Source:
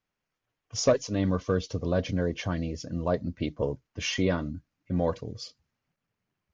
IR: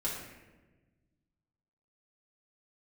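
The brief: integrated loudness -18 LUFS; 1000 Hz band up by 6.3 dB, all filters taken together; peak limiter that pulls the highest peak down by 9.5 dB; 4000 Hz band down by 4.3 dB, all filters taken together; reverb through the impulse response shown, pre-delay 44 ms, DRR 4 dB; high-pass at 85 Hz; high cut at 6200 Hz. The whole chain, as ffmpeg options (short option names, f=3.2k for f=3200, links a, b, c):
-filter_complex "[0:a]highpass=85,lowpass=6.2k,equalizer=f=1k:t=o:g=8.5,equalizer=f=4k:t=o:g=-6,alimiter=limit=-16.5dB:level=0:latency=1,asplit=2[a][b];[1:a]atrim=start_sample=2205,adelay=44[c];[b][c]afir=irnorm=-1:irlink=0,volume=-8dB[d];[a][d]amix=inputs=2:normalize=0,volume=10.5dB"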